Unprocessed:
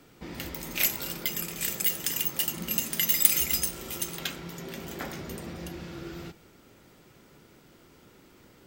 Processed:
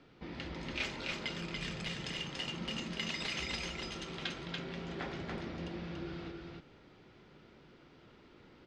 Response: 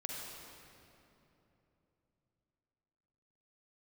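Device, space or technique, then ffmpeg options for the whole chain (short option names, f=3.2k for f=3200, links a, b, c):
synthesiser wavefolder: -filter_complex "[0:a]aeval=exprs='0.112*(abs(mod(val(0)/0.112+3,4)-2)-1)':c=same,lowpass=f=4.5k:w=0.5412,lowpass=f=4.5k:w=1.3066,asettb=1/sr,asplit=3[a][b][c];[a]atrim=end=1.204[d];[b]atrim=start=1.2:end=2.01,asetpts=PTS-STARTPTS,afade=t=in:d=0.004:c=qsin,afade=t=out:st=0.806:d=0.004:c=qsin,asubboost=boost=10:cutoff=180[e];[c]atrim=start=2.006[f];[d][e]acrossfade=d=0.004:c1=hsin:c2=qsin[g];[g][f]acrossfade=d=0.004:c1=qsin:c2=hsin,aecho=1:1:286:0.708,volume=-4.5dB"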